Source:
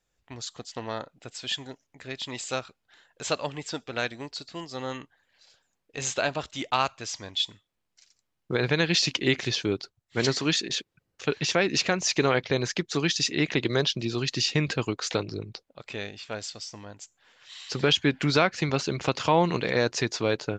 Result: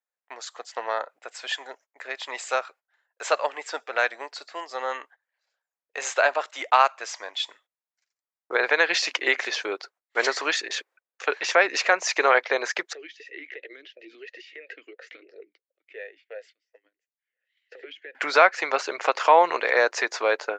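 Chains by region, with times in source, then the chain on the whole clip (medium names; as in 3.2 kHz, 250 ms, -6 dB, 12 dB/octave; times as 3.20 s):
12.93–18.15 s: compression 10:1, threshold -26 dBFS + talking filter e-i 2.9 Hz
whole clip: gate -53 dBFS, range -21 dB; high-pass 520 Hz 24 dB/octave; resonant high shelf 2.5 kHz -7.5 dB, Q 1.5; trim +7 dB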